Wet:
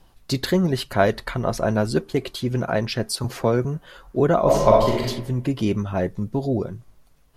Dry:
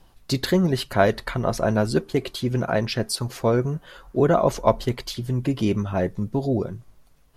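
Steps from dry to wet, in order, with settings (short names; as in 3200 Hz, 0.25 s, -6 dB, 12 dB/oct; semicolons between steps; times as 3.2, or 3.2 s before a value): 3.24–3.65 three-band squash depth 40%; 4.41–5.01 reverb throw, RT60 0.91 s, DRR -3 dB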